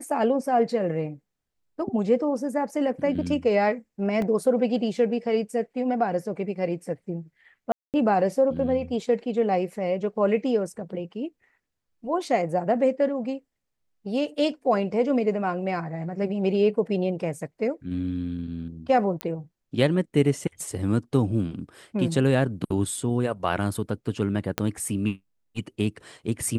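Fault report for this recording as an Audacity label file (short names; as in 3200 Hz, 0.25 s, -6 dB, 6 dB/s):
4.220000	4.220000	gap 2 ms
7.720000	7.940000	gap 0.218 s
19.210000	19.210000	pop -13 dBFS
24.580000	24.580000	pop -8 dBFS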